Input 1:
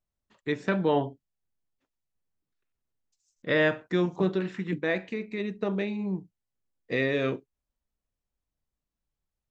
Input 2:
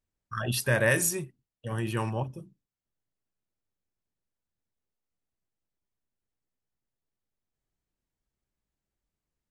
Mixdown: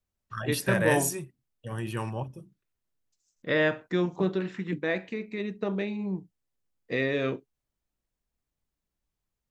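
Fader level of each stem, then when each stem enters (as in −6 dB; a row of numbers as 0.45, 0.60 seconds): −1.0, −2.5 decibels; 0.00, 0.00 seconds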